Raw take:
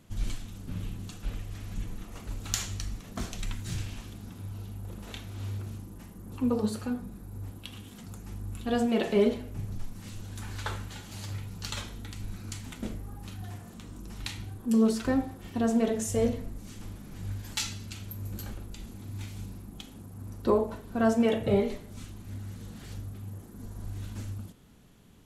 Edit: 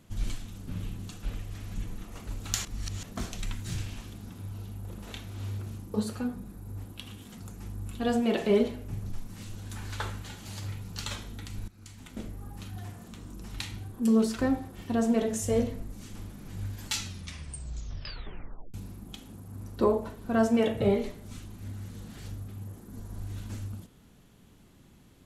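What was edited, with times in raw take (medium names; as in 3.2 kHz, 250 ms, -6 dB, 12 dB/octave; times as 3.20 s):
2.65–3.03 s: reverse
5.94–6.60 s: delete
12.34–13.14 s: fade in, from -18 dB
17.65 s: tape stop 1.75 s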